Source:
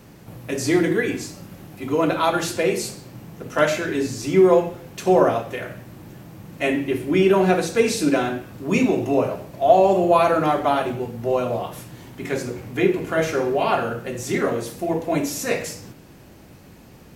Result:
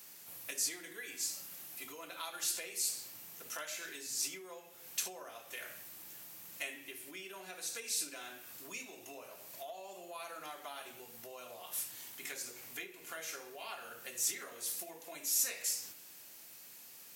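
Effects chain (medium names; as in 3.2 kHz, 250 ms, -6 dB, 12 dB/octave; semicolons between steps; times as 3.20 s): compression 6:1, threshold -29 dBFS, peak gain reduction 18.5 dB; differentiator; trim +3.5 dB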